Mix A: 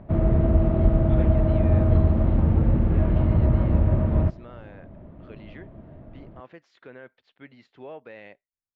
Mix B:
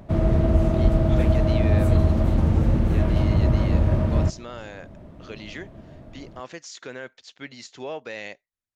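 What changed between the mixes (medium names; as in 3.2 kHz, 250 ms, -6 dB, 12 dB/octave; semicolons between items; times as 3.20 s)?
speech +5.5 dB; master: remove distance through air 480 m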